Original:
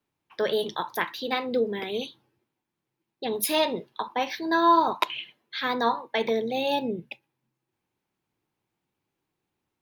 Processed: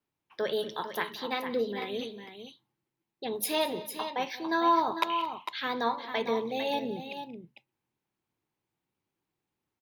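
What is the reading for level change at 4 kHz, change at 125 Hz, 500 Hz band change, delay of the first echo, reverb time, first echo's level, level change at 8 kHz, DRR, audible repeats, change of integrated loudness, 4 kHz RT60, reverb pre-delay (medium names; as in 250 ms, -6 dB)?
-4.5 dB, -4.0 dB, -4.5 dB, 180 ms, no reverb, -19.5 dB, -4.5 dB, no reverb, 3, -4.5 dB, no reverb, no reverb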